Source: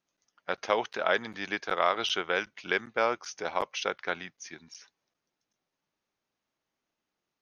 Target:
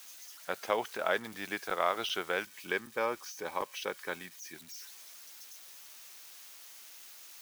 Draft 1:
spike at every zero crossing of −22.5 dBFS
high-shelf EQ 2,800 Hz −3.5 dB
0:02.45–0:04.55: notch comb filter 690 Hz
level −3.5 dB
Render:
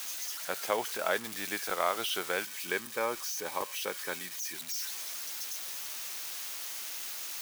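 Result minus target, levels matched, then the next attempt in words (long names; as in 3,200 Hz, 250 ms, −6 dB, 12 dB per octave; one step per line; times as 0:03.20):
spike at every zero crossing: distortion +12 dB
spike at every zero crossing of −34.5 dBFS
high-shelf EQ 2,800 Hz −3.5 dB
0:02.45–0:04.55: notch comb filter 690 Hz
level −3.5 dB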